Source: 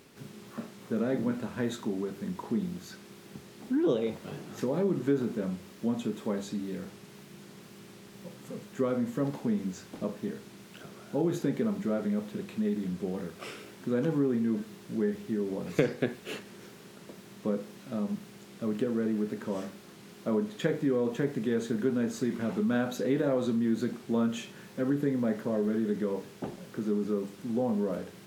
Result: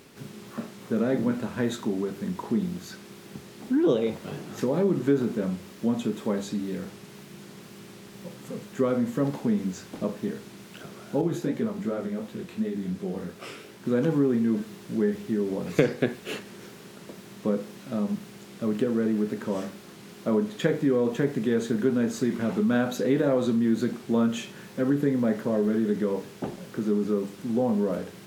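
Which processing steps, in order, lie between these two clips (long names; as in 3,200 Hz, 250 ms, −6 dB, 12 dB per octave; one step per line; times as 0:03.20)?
0:11.21–0:13.86: chorus effect 2.7 Hz, delay 16 ms, depth 6.8 ms
level +4.5 dB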